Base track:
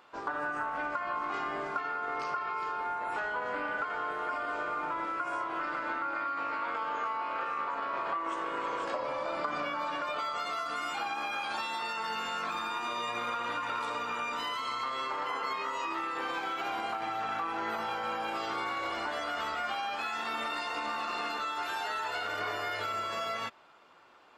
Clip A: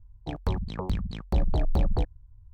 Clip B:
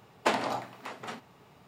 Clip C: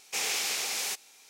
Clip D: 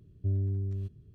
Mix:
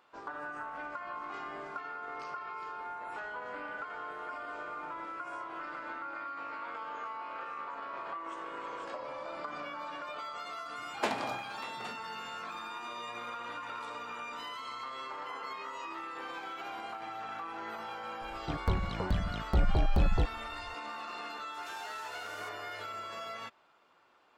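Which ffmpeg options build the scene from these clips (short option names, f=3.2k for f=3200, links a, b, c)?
-filter_complex "[0:a]volume=-7dB[a];[2:a]acontrast=81[b];[3:a]acompressor=threshold=-41dB:ratio=16:attack=1.4:release=635:knee=1:detection=peak[c];[b]atrim=end=1.67,asetpts=PTS-STARTPTS,volume=-12dB,afade=t=in:d=0.004:c=hsin,afade=t=out:st=1.666:d=0.004:c=hsin,adelay=10770[d];[1:a]atrim=end=2.53,asetpts=PTS-STARTPTS,volume=-2.5dB,afade=t=in:d=0.004:c=hsin,afade=t=out:st=2.526:d=0.004:c=hsin,adelay=18210[e];[c]atrim=end=1.29,asetpts=PTS-STARTPTS,volume=-8.5dB,afade=t=in:d=0.004:c=hsin,afade=t=out:st=1.286:d=0.004:c=hsin,adelay=21540[f];[a][d][e][f]amix=inputs=4:normalize=0"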